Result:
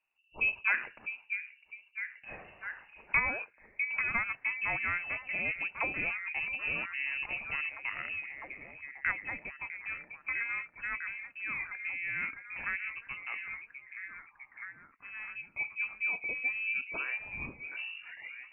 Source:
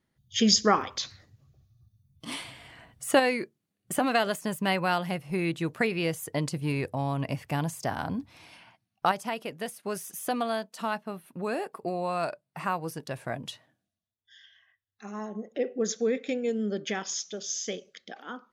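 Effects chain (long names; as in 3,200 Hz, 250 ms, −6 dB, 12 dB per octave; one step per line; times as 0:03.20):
turntable brake at the end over 2.13 s
echo through a band-pass that steps 652 ms, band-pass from 420 Hz, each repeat 0.7 octaves, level −2.5 dB
voice inversion scrambler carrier 2,800 Hz
level −7 dB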